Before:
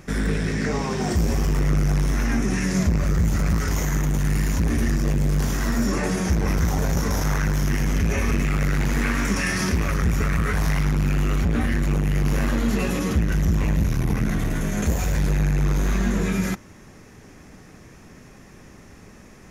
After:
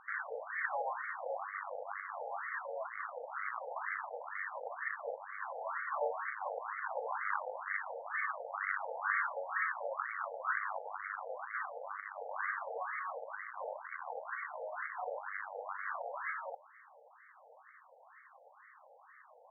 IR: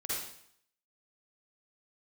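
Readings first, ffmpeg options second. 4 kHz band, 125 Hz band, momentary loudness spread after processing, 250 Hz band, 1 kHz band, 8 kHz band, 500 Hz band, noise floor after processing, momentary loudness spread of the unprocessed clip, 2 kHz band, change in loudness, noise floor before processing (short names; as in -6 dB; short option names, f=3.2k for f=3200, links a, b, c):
under -40 dB, under -40 dB, 7 LU, under -40 dB, -5.0 dB, under -40 dB, -11.5 dB, -61 dBFS, 2 LU, -7.5 dB, -16.5 dB, -46 dBFS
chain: -af "afftfilt=real='re*between(b*sr/1024,620*pow(1600/620,0.5+0.5*sin(2*PI*2.1*pts/sr))/1.41,620*pow(1600/620,0.5+0.5*sin(2*PI*2.1*pts/sr))*1.41)':imag='im*between(b*sr/1024,620*pow(1600/620,0.5+0.5*sin(2*PI*2.1*pts/sr))/1.41,620*pow(1600/620,0.5+0.5*sin(2*PI*2.1*pts/sr))*1.41)':win_size=1024:overlap=0.75,volume=-2dB"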